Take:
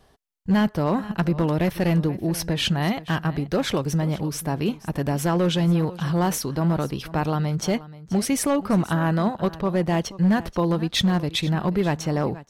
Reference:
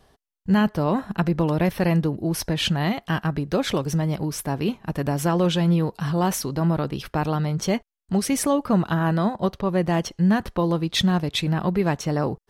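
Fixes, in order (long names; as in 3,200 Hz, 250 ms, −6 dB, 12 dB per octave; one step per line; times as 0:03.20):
clipped peaks rebuilt −14 dBFS
echo removal 481 ms −17.5 dB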